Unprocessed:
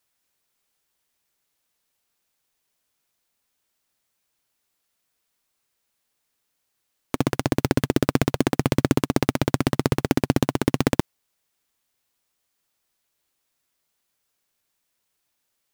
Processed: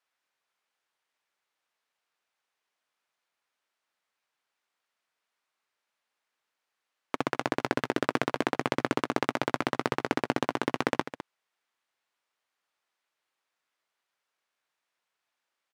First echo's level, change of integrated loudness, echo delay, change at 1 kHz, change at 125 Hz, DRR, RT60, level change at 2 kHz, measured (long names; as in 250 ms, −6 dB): −13.0 dB, −7.0 dB, 206 ms, −1.0 dB, −16.0 dB, no reverb audible, no reverb audible, −1.0 dB